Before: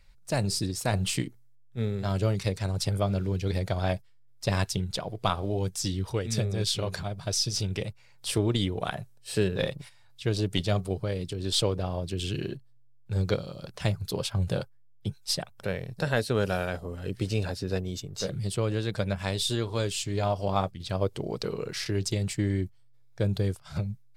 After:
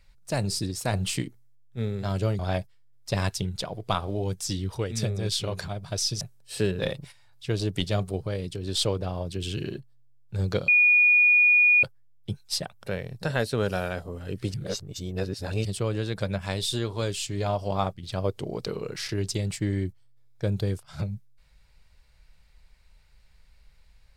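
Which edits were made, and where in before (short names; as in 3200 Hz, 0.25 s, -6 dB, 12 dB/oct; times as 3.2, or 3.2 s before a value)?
2.39–3.74 cut
7.56–8.98 cut
13.45–14.6 bleep 2450 Hz -15 dBFS
17.31–18.42 reverse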